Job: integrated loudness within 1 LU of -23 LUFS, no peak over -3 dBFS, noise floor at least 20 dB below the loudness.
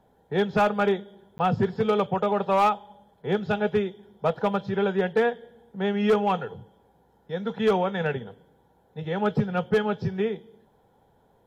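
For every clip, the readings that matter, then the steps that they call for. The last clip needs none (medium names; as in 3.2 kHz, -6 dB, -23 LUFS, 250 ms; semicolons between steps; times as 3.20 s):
clipped samples 0.8%; clipping level -15.0 dBFS; dropouts 1; longest dropout 10 ms; loudness -25.5 LUFS; peak level -15.0 dBFS; loudness target -23.0 LUFS
-> clip repair -15 dBFS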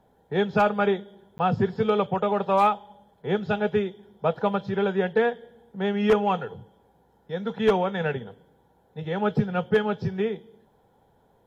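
clipped samples 0.0%; dropouts 1; longest dropout 10 ms
-> interpolate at 1.38 s, 10 ms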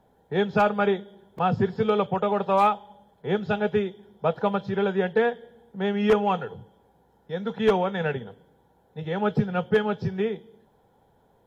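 dropouts 0; loudness -25.5 LUFS; peak level -6.0 dBFS; loudness target -23.0 LUFS
-> trim +2.5 dB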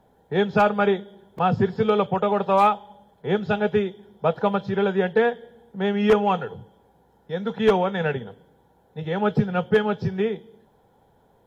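loudness -23.0 LUFS; peak level -3.5 dBFS; noise floor -61 dBFS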